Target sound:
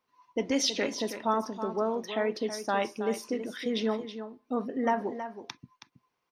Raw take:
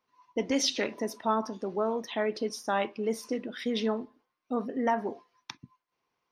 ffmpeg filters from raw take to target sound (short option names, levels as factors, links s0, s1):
-af "aecho=1:1:322:0.299"